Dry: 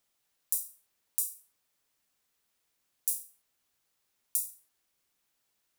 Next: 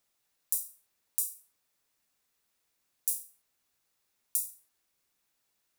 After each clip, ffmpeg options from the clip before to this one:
ffmpeg -i in.wav -af "bandreject=frequency=3100:width=22" out.wav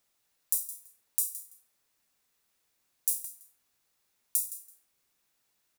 ffmpeg -i in.wav -af "aecho=1:1:166|332:0.211|0.0359,volume=2dB" out.wav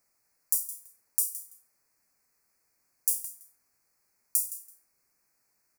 ffmpeg -i in.wav -af "asuperstop=centerf=3300:order=8:qfactor=1.8,volume=2dB" out.wav

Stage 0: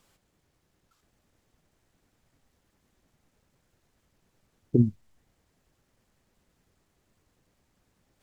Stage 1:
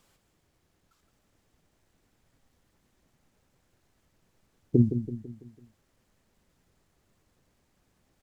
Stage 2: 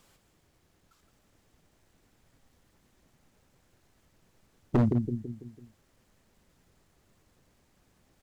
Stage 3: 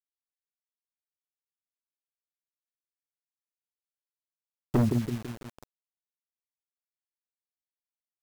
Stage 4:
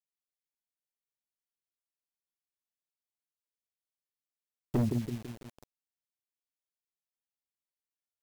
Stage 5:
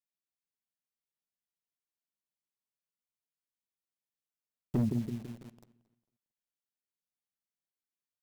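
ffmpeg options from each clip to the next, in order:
ffmpeg -i in.wav -af "aecho=1:1:166|332|498|664|830:0.335|0.157|0.074|0.0348|0.0163" out.wav
ffmpeg -i in.wav -af "asoftclip=type=hard:threshold=-22.5dB,volume=3.5dB" out.wav
ffmpeg -i in.wav -af "acrusher=bits=6:mix=0:aa=0.000001" out.wav
ffmpeg -i in.wav -af "equalizer=frequency=1300:width=1.5:gain=-5,volume=-4.5dB" out.wav
ffmpeg -i in.wav -filter_complex "[0:a]equalizer=frequency=180:width_type=o:width=1.2:gain=8,asplit=2[link_01][link_02];[link_02]adelay=225,lowpass=frequency=4700:poles=1,volume=-20dB,asplit=2[link_03][link_04];[link_04]adelay=225,lowpass=frequency=4700:poles=1,volume=0.32,asplit=2[link_05][link_06];[link_06]adelay=225,lowpass=frequency=4700:poles=1,volume=0.32[link_07];[link_01][link_03][link_05][link_07]amix=inputs=4:normalize=0,volume=-5.5dB" out.wav

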